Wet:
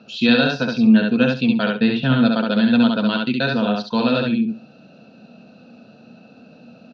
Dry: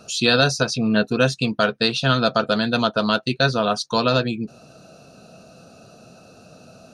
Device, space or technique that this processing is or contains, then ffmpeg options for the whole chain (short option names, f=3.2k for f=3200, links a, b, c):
kitchen radio: -filter_complex "[0:a]asettb=1/sr,asplit=3[a][b][c];[a]atrim=end=1.774[d];[b]atrim=start=1.77:end=2.25,asetpts=PTS-STARTPTS,afade=t=in:d=0.004:c=qsin,afade=t=out:st=0.476:d=0.004:c=qsin,bass=f=250:g=6,treble=f=4k:g=-13[e];[c]atrim=start=2.246[f];[d][e]acrossfade=d=0.004:c1=hsin:c2=qsin[g];[g][f]acrossfade=d=0.004:c1=qsin:c2=hsin,highpass=170,equalizer=f=230:t=q:w=4:g=9,equalizer=f=390:t=q:w=4:g=-5,equalizer=f=650:t=q:w=4:g=-6,equalizer=f=1.2k:t=q:w=4:g=-10,lowpass=f=3.6k:w=0.5412,lowpass=f=3.6k:w=1.3066,aecho=1:1:68|136|204:0.708|0.113|0.0181"